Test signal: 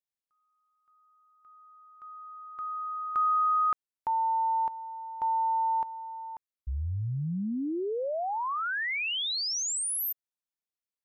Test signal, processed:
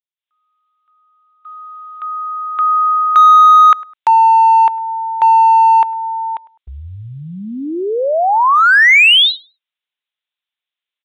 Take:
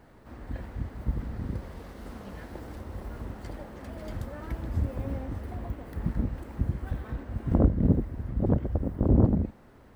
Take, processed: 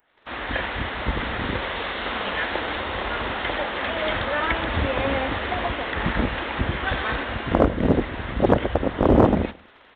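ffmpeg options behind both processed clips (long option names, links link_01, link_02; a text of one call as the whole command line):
ffmpeg -i in.wav -filter_complex "[0:a]aresample=8000,aresample=44100,aemphasis=mode=production:type=bsi,crystalizer=i=6.5:c=0,acrossover=split=2800[link_01][link_02];[link_02]acompressor=threshold=-55dB:ratio=4:attack=1:release=60[link_03];[link_01][link_03]amix=inputs=2:normalize=0,asplit=2[link_04][link_05];[link_05]volume=24.5dB,asoftclip=hard,volume=-24.5dB,volume=-9dB[link_06];[link_04][link_06]amix=inputs=2:normalize=0,agate=range=-14dB:threshold=-54dB:ratio=16:release=28:detection=peak,equalizer=frequency=160:width_type=o:width=2.5:gain=-9,asplit=2[link_07][link_08];[link_08]adelay=103,lowpass=frequency=2400:poles=1,volume=-21dB,asplit=2[link_09][link_10];[link_10]adelay=103,lowpass=frequency=2400:poles=1,volume=0.32[link_11];[link_07][link_09][link_11]amix=inputs=3:normalize=0,dynaudnorm=framelen=170:gausssize=3:maxgain=16dB" out.wav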